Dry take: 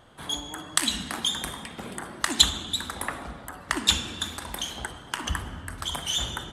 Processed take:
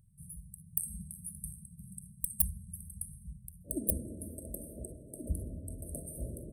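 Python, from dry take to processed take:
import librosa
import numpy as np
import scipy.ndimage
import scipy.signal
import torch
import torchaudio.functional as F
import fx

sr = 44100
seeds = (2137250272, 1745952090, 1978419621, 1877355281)

y = (np.mod(10.0 ** (10.5 / 20.0) * x + 1.0, 2.0) - 1.0) / 10.0 ** (10.5 / 20.0)
y = fx.brickwall_bandstop(y, sr, low_hz=fx.steps((0.0, 200.0), (3.64, 670.0)), high_hz=8300.0)
y = F.gain(torch.from_numpy(y), -3.5).numpy()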